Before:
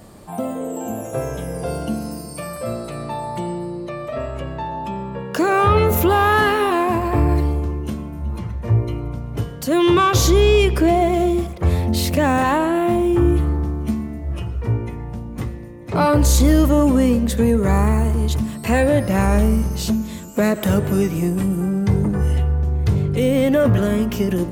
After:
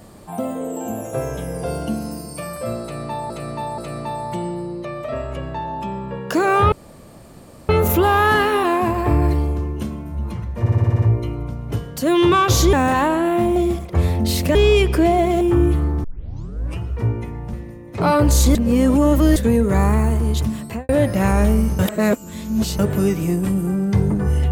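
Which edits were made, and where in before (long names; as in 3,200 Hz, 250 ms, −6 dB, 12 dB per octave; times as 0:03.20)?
0:02.82–0:03.30: repeat, 3 plays
0:05.76: splice in room tone 0.97 s
0:08.67: stutter 0.06 s, 8 plays
0:10.38–0:11.24: swap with 0:12.23–0:13.06
0:13.69: tape start 0.74 s
0:15.18–0:15.47: remove
0:16.49–0:17.30: reverse
0:18.55–0:18.83: fade out and dull
0:19.73–0:20.73: reverse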